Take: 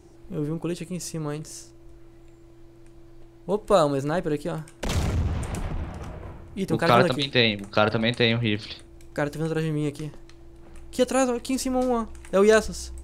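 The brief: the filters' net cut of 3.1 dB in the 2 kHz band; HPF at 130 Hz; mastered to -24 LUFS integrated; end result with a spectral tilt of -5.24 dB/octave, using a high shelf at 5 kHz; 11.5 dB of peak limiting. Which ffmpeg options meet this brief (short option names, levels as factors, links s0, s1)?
-af "highpass=130,equalizer=f=2000:t=o:g=-3,highshelf=f=5000:g=-6.5,volume=1.88,alimiter=limit=0.266:level=0:latency=1"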